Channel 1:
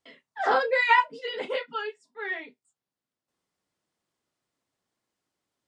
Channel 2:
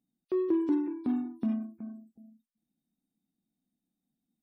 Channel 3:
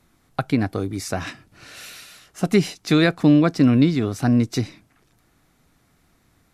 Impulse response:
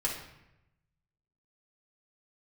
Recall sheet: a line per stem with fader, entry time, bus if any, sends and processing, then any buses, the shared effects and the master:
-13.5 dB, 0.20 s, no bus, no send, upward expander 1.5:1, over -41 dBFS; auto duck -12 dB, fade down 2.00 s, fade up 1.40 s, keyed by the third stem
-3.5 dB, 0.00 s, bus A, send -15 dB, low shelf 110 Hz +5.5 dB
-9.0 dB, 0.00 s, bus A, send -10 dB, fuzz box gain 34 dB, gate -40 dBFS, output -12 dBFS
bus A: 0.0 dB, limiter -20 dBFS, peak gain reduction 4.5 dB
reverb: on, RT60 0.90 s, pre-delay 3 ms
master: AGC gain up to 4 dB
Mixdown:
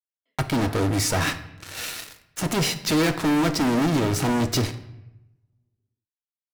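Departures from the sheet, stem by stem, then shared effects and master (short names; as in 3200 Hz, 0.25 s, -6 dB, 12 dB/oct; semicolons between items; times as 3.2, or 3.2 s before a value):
stem 2: muted; master: missing AGC gain up to 4 dB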